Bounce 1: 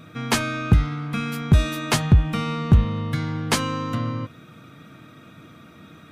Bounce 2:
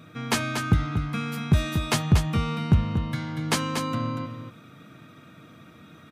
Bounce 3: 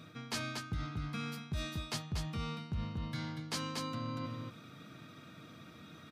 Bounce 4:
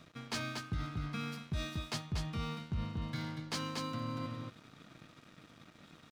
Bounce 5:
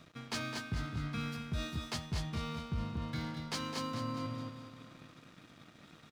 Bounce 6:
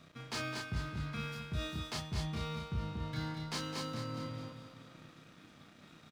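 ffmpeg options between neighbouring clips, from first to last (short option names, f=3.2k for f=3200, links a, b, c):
-af "highpass=65,aecho=1:1:237:0.447,volume=-3.5dB"
-af "equalizer=f=4.7k:w=1.7:g=8,areverse,acompressor=threshold=-32dB:ratio=5,areverse,volume=-4.5dB"
-af "highshelf=f=11k:g=-12,aeval=exprs='sgn(val(0))*max(abs(val(0))-0.00168,0)':c=same,volume=1.5dB"
-af "aecho=1:1:210|420|630|840|1050:0.355|0.17|0.0817|0.0392|0.0188"
-filter_complex "[0:a]asplit=2[a][b];[b]adelay=32,volume=-2.5dB[c];[a][c]amix=inputs=2:normalize=0,volume=-2.5dB"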